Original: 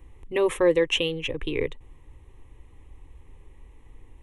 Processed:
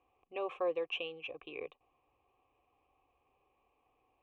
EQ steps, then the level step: vowel filter a; air absorption 160 m; high shelf 3500 Hz +8 dB; 0.0 dB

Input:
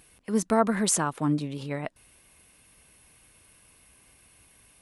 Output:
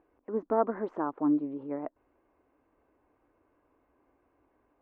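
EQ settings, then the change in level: ladder low-pass 1400 Hz, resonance 20%; resonant low shelf 230 Hz -8 dB, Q 3; 0.0 dB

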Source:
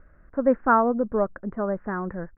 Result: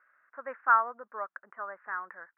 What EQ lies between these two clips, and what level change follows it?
Butterworth band-pass 1800 Hz, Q 1; 0.0 dB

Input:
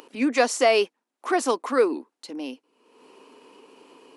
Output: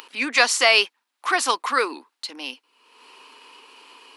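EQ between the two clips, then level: tilt +3 dB/oct; band shelf 2000 Hz +9 dB 2.8 oct; -3.0 dB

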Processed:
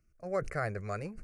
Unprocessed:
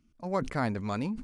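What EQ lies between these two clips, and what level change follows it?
fixed phaser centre 930 Hz, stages 6; 0.0 dB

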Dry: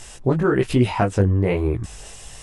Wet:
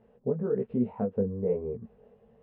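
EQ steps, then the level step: double band-pass 320 Hz, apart 1 oct; air absorption 440 m; 0.0 dB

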